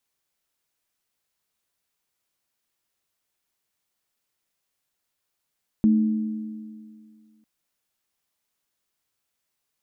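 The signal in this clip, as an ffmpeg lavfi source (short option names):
-f lavfi -i "aevalsrc='0.211*pow(10,-3*t/2.12)*sin(2*PI*218*t)+0.0531*pow(10,-3*t/2.26)*sin(2*PI*309*t)':d=1.6:s=44100"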